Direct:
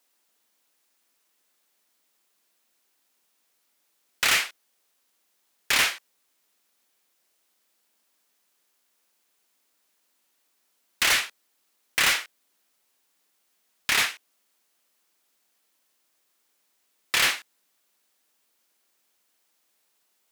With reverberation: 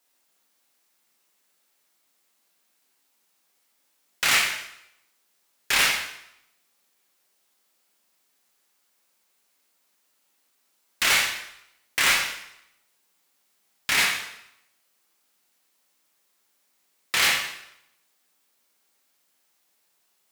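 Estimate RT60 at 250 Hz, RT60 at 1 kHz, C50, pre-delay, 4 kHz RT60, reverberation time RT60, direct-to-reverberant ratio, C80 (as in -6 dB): 0.75 s, 0.80 s, 4.5 dB, 6 ms, 0.75 s, 0.80 s, -0.5 dB, 7.5 dB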